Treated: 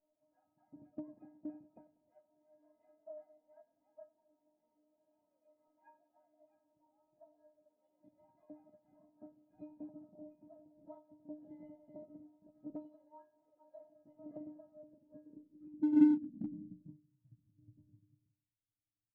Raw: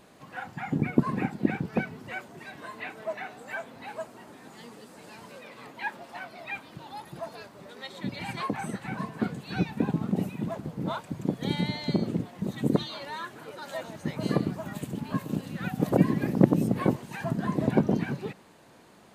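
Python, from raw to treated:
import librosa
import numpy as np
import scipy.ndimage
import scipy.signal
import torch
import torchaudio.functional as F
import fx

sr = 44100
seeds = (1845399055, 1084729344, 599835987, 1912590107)

p1 = fx.low_shelf(x, sr, hz=230.0, db=9.5)
p2 = fx.stiff_resonator(p1, sr, f0_hz=300.0, decay_s=0.44, stiffness=0.008)
p3 = fx.echo_feedback(p2, sr, ms=96, feedback_pct=53, wet_db=-15)
p4 = fx.filter_sweep_lowpass(p3, sr, from_hz=700.0, to_hz=110.0, start_s=14.69, end_s=17.46, q=5.9)
p5 = np.clip(p4, -10.0 ** (-26.5 / 20.0), 10.0 ** (-26.5 / 20.0))
p6 = p4 + (p5 * 10.0 ** (-8.5 / 20.0))
p7 = fx.upward_expand(p6, sr, threshold_db=-50.0, expansion=1.5)
y = p7 * 10.0 ** (-5.5 / 20.0)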